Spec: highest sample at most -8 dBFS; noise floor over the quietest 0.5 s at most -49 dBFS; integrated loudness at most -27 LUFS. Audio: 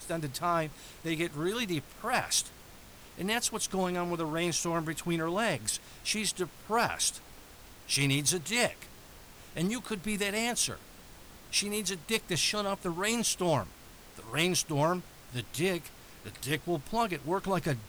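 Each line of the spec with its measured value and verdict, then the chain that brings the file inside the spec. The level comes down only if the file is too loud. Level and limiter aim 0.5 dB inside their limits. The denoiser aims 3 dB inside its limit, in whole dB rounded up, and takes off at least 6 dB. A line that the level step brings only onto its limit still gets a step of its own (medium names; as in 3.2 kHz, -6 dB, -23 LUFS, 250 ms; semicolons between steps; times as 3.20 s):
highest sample -18.0 dBFS: pass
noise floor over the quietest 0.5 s -51 dBFS: pass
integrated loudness -31.0 LUFS: pass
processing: none needed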